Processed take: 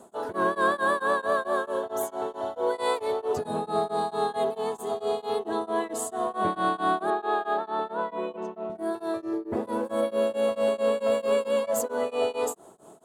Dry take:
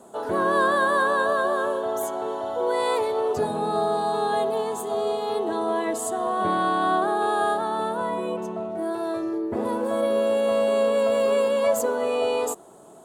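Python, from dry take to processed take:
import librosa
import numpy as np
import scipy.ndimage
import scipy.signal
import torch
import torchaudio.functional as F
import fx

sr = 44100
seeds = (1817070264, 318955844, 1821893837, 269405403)

p1 = fx.bandpass_edges(x, sr, low_hz=250.0, high_hz=3900.0, at=(7.1, 8.7))
p2 = 10.0 ** (-18.0 / 20.0) * np.tanh(p1 / 10.0 ** (-18.0 / 20.0))
p3 = p1 + (p2 * 10.0 ** (-10.5 / 20.0))
p4 = p3 * np.abs(np.cos(np.pi * 4.5 * np.arange(len(p3)) / sr))
y = p4 * 10.0 ** (-2.5 / 20.0)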